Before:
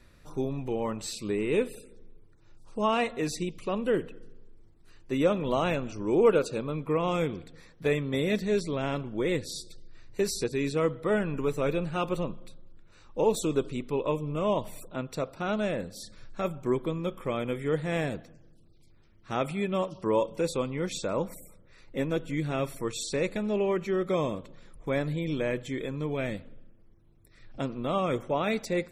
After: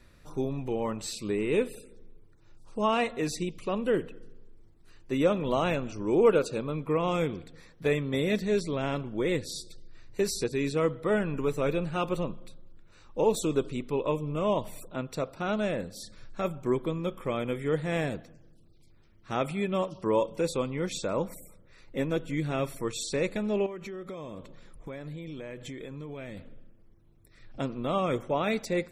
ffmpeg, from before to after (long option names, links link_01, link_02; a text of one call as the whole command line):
ffmpeg -i in.wav -filter_complex "[0:a]asettb=1/sr,asplit=3[link_01][link_02][link_03];[link_01]atrim=end=23.664[link_04];[link_02]atrim=start=23.66:end=26.37,asetpts=PTS-STARTPTS,afade=type=in:duration=0.004:curve=qsin,afade=type=out:start_time=2.706:duration=0.004:curve=qsin,acompressor=threshold=-36dB:ratio=10:attack=3.2:release=140:knee=1:detection=peak[link_05];[link_03]atrim=start=26.366[link_06];[link_04][link_05]acrossfade=duration=0.004:curve1=hsin:curve2=qsin[link_07];[link_07][link_06]acrossfade=duration=0.004:curve1=qsin:curve2=hsin" out.wav